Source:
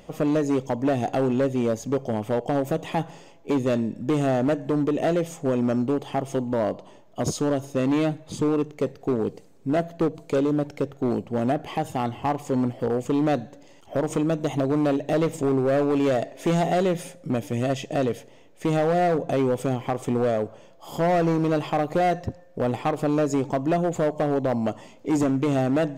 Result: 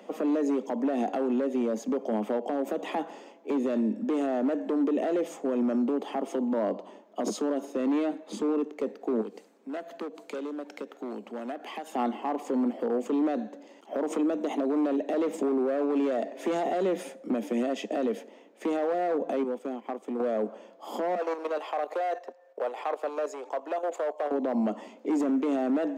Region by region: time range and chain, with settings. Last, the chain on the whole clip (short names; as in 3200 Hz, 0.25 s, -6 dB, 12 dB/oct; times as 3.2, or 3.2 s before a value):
9.21–11.95 tilt shelf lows -6 dB, about 820 Hz + compressor 3:1, threshold -38 dBFS + mismatched tape noise reduction decoder only
19.43–20.2 gate -31 dBFS, range -12 dB + compressor 2:1, threshold -39 dBFS
21.15–24.31 HPF 490 Hz 24 dB/oct + level quantiser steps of 10 dB
whole clip: steep high-pass 200 Hz 96 dB/oct; high shelf 2900 Hz -10.5 dB; limiter -22.5 dBFS; gain +2.5 dB